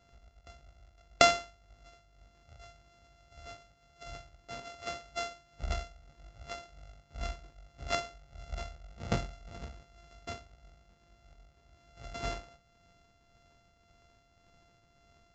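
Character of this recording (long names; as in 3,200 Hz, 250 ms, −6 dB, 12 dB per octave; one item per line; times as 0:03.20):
a buzz of ramps at a fixed pitch in blocks of 64 samples
tremolo triangle 1.8 Hz, depth 45%
Ogg Vorbis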